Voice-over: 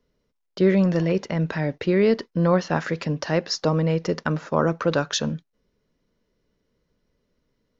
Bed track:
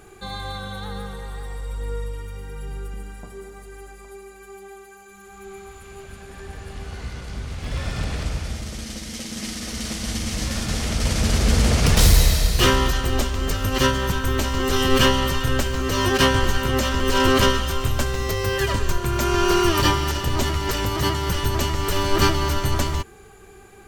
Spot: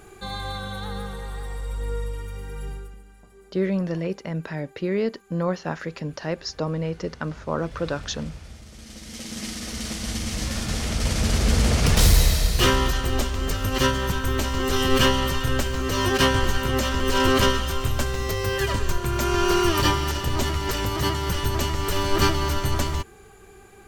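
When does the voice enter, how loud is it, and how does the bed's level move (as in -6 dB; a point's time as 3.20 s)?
2.95 s, -5.5 dB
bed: 2.68 s 0 dB
3.02 s -13 dB
8.68 s -13 dB
9.30 s -2 dB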